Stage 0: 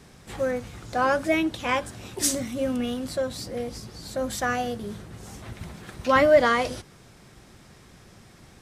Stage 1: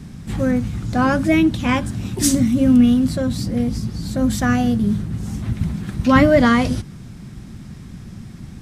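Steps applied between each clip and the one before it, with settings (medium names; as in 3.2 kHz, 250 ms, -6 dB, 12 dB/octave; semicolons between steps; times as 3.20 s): resonant low shelf 320 Hz +12 dB, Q 1.5; trim +4 dB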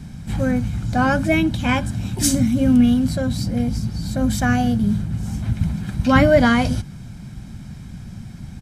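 comb 1.3 ms, depth 44%; trim -1 dB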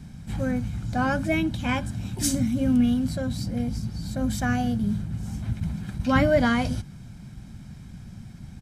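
attacks held to a fixed rise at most 340 dB/s; trim -6.5 dB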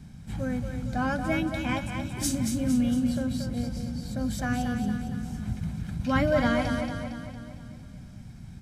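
two-band feedback delay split 380 Hz, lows 299 ms, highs 229 ms, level -6 dB; trim -4 dB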